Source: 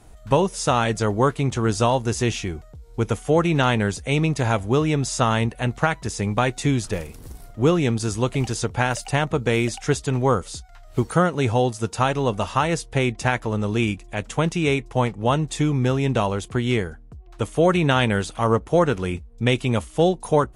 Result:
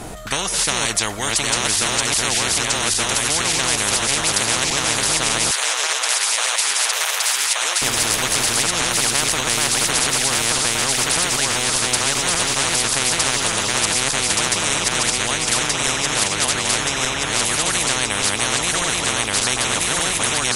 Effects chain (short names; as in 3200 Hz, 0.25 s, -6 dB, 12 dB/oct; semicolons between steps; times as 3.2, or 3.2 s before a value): regenerating reverse delay 0.588 s, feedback 70%, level -0.5 dB; 5.51–7.82 HPF 1300 Hz 24 dB/oct; spectral compressor 10:1; gain -2 dB